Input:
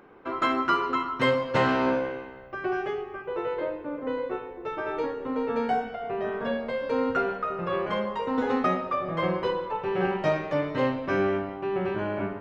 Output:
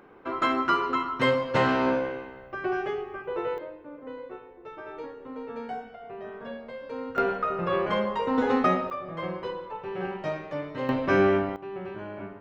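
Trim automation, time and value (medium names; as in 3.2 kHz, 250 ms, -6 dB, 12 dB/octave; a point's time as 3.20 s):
0 dB
from 3.58 s -9.5 dB
from 7.18 s +2 dB
from 8.90 s -6.5 dB
from 10.89 s +4 dB
from 11.56 s -8.5 dB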